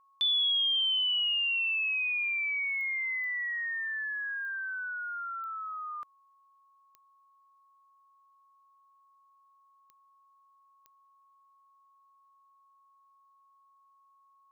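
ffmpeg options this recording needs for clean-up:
ffmpeg -i in.wav -af "adeclick=threshold=4,bandreject=frequency=1100:width=30" out.wav

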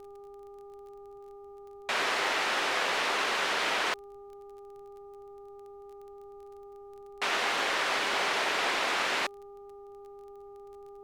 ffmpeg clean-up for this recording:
ffmpeg -i in.wav -af "adeclick=threshold=4,bandreject=frequency=402.4:width_type=h:width=4,bandreject=frequency=804.8:width_type=h:width=4,bandreject=frequency=1207.2:width_type=h:width=4,agate=range=-21dB:threshold=-40dB" out.wav

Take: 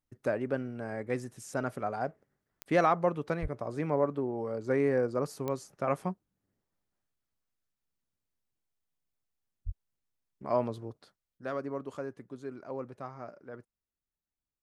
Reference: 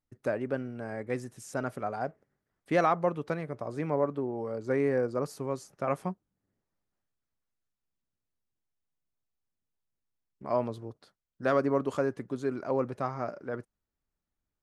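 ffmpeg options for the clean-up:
ffmpeg -i in.wav -filter_complex "[0:a]adeclick=threshold=4,asplit=3[link_01][link_02][link_03];[link_01]afade=type=out:start_time=3.41:duration=0.02[link_04];[link_02]highpass=frequency=140:width=0.5412,highpass=frequency=140:width=1.3066,afade=type=in:start_time=3.41:duration=0.02,afade=type=out:start_time=3.53:duration=0.02[link_05];[link_03]afade=type=in:start_time=3.53:duration=0.02[link_06];[link_04][link_05][link_06]amix=inputs=3:normalize=0,asplit=3[link_07][link_08][link_09];[link_07]afade=type=out:start_time=9.65:duration=0.02[link_10];[link_08]highpass=frequency=140:width=0.5412,highpass=frequency=140:width=1.3066,afade=type=in:start_time=9.65:duration=0.02,afade=type=out:start_time=9.77:duration=0.02[link_11];[link_09]afade=type=in:start_time=9.77:duration=0.02[link_12];[link_10][link_11][link_12]amix=inputs=3:normalize=0,asetnsamples=nb_out_samples=441:pad=0,asendcmd='11.38 volume volume 9.5dB',volume=0dB" out.wav

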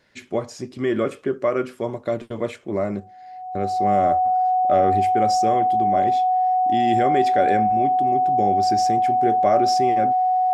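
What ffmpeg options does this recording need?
ffmpeg -i in.wav -af "bandreject=frequency=740:width=30" out.wav

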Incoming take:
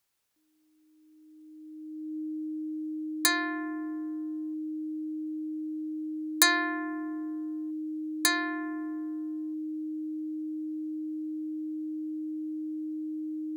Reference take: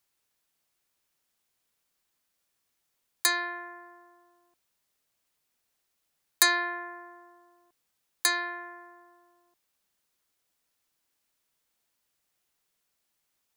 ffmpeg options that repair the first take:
ffmpeg -i in.wav -af "bandreject=frequency=310:width=30" out.wav

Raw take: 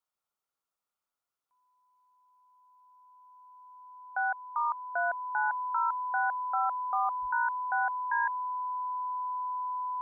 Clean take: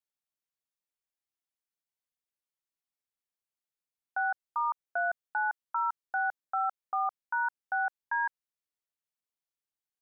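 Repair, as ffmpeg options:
ffmpeg -i in.wav -filter_complex "[0:a]bandreject=frequency=1000:width=30,asplit=3[link_01][link_02][link_03];[link_01]afade=type=out:start_time=7.21:duration=0.02[link_04];[link_02]highpass=frequency=140:width=0.5412,highpass=frequency=140:width=1.3066,afade=type=in:start_time=7.21:duration=0.02,afade=type=out:start_time=7.33:duration=0.02[link_05];[link_03]afade=type=in:start_time=7.33:duration=0.02[link_06];[link_04][link_05][link_06]amix=inputs=3:normalize=0,agate=range=-21dB:threshold=-82dB" out.wav

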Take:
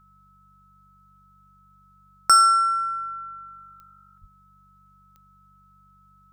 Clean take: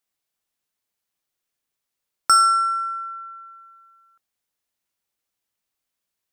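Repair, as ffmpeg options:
ffmpeg -i in.wav -filter_complex "[0:a]adeclick=threshold=4,bandreject=frequency=48.4:width_type=h:width=4,bandreject=frequency=96.8:width_type=h:width=4,bandreject=frequency=145.2:width_type=h:width=4,bandreject=frequency=193.6:width_type=h:width=4,bandreject=frequency=1300:width=30,asplit=3[link_01][link_02][link_03];[link_01]afade=type=out:start_time=4.2:duration=0.02[link_04];[link_02]highpass=frequency=140:width=0.5412,highpass=frequency=140:width=1.3066,afade=type=in:start_time=4.2:duration=0.02,afade=type=out:start_time=4.32:duration=0.02[link_05];[link_03]afade=type=in:start_time=4.32:duration=0.02[link_06];[link_04][link_05][link_06]amix=inputs=3:normalize=0" out.wav

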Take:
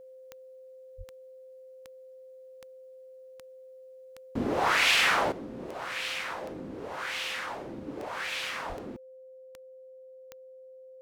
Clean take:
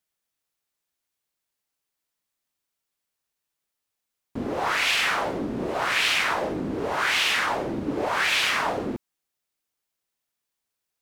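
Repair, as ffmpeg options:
ffmpeg -i in.wav -filter_complex "[0:a]adeclick=threshold=4,bandreject=frequency=520:width=30,asplit=3[link_01][link_02][link_03];[link_01]afade=type=out:start_time=0.97:duration=0.02[link_04];[link_02]highpass=frequency=140:width=0.5412,highpass=frequency=140:width=1.3066,afade=type=in:start_time=0.97:duration=0.02,afade=type=out:start_time=1.09:duration=0.02[link_05];[link_03]afade=type=in:start_time=1.09:duration=0.02[link_06];[link_04][link_05][link_06]amix=inputs=3:normalize=0,asplit=3[link_07][link_08][link_09];[link_07]afade=type=out:start_time=8.68:duration=0.02[link_10];[link_08]highpass=frequency=140:width=0.5412,highpass=frequency=140:width=1.3066,afade=type=in:start_time=8.68:duration=0.02,afade=type=out:start_time=8.8:duration=0.02[link_11];[link_09]afade=type=in:start_time=8.8:duration=0.02[link_12];[link_10][link_11][link_12]amix=inputs=3:normalize=0,asetnsamples=nb_out_samples=441:pad=0,asendcmd='5.32 volume volume 11.5dB',volume=0dB" out.wav

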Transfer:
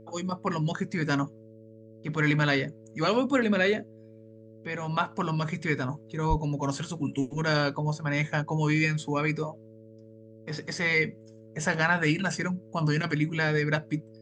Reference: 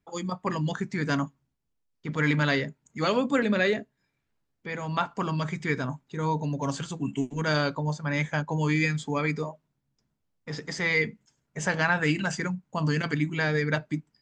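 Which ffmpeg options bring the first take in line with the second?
ffmpeg -i in.wav -filter_complex "[0:a]bandreject=frequency=110.6:width_type=h:width=4,bandreject=frequency=221.2:width_type=h:width=4,bandreject=frequency=331.8:width_type=h:width=4,bandreject=frequency=442.4:width_type=h:width=4,bandreject=frequency=553:width_type=h:width=4,asplit=3[link_01][link_02][link_03];[link_01]afade=type=out:start_time=6.29:duration=0.02[link_04];[link_02]highpass=frequency=140:width=0.5412,highpass=frequency=140:width=1.3066,afade=type=in:start_time=6.29:duration=0.02,afade=type=out:start_time=6.41:duration=0.02[link_05];[link_03]afade=type=in:start_time=6.41:duration=0.02[link_06];[link_04][link_05][link_06]amix=inputs=3:normalize=0" out.wav

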